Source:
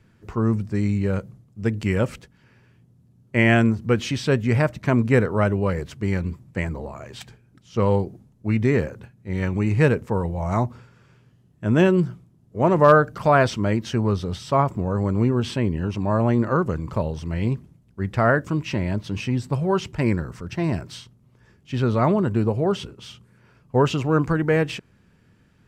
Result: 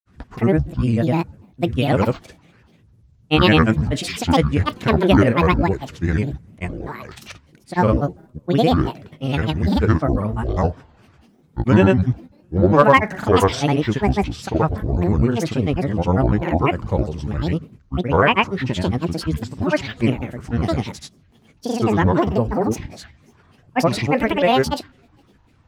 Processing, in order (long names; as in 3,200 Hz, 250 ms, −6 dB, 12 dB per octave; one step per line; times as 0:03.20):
coupled-rooms reverb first 0.52 s, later 1.8 s, from −21 dB, DRR 14 dB
granular cloud, pitch spread up and down by 12 semitones
level +4 dB